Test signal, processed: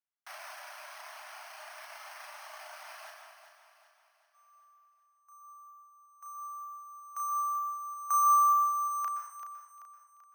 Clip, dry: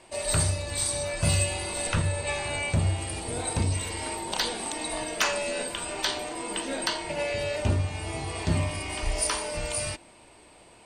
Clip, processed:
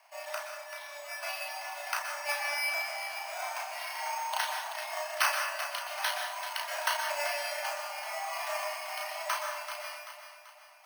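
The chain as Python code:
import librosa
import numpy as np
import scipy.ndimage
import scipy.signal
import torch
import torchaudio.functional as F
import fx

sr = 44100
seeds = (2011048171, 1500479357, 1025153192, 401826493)

p1 = fx.tilt_eq(x, sr, slope=3.5)
p2 = fx.dereverb_blind(p1, sr, rt60_s=2.0)
p3 = fx.rider(p2, sr, range_db=4, speed_s=2.0)
p4 = scipy.signal.sosfilt(scipy.signal.butter(2, 1800.0, 'lowpass', fs=sr, output='sos'), p3)
p5 = fx.doubler(p4, sr, ms=34.0, db=-4.0)
p6 = p5 + fx.echo_feedback(p5, sr, ms=386, feedback_pct=46, wet_db=-10, dry=0)
p7 = np.repeat(scipy.signal.resample_poly(p6, 1, 6), 6)[:len(p6)]
p8 = scipy.signal.sosfilt(scipy.signal.cheby1(8, 1.0, 600.0, 'highpass', fs=sr, output='sos'), p7)
y = fx.rev_plate(p8, sr, seeds[0], rt60_s=0.75, hf_ratio=0.75, predelay_ms=110, drr_db=4.0)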